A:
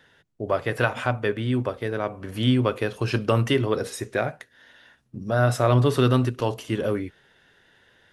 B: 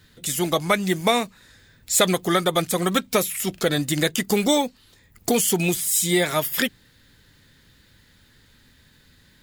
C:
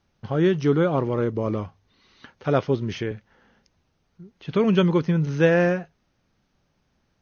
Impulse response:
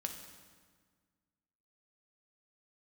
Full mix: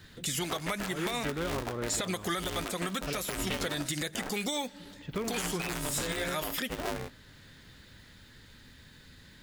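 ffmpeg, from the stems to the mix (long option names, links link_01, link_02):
-filter_complex "[0:a]aeval=exprs='(mod(2.82*val(0)+1,2)-1)/2.82':channel_layout=same,aeval=exprs='val(0)*sgn(sin(2*PI*160*n/s))':channel_layout=same,volume=-7dB,asplit=2[link_01][link_02];[1:a]equalizer=frequency=16000:width_type=o:width=0.94:gain=-7,volume=1.5dB,asplit=2[link_03][link_04];[link_04]volume=-22.5dB[link_05];[2:a]adelay=600,volume=-8dB[link_06];[link_02]apad=whole_len=415852[link_07];[link_03][link_07]sidechaincompress=threshold=-29dB:ratio=8:attack=31:release=1160[link_08];[3:a]atrim=start_sample=2205[link_09];[link_05][link_09]afir=irnorm=-1:irlink=0[link_10];[link_01][link_08][link_06][link_10]amix=inputs=4:normalize=0,acrossover=split=1100|6100[link_11][link_12][link_13];[link_11]acompressor=threshold=-32dB:ratio=4[link_14];[link_12]acompressor=threshold=-30dB:ratio=4[link_15];[link_13]acompressor=threshold=-34dB:ratio=4[link_16];[link_14][link_15][link_16]amix=inputs=3:normalize=0,alimiter=limit=-21.5dB:level=0:latency=1:release=76"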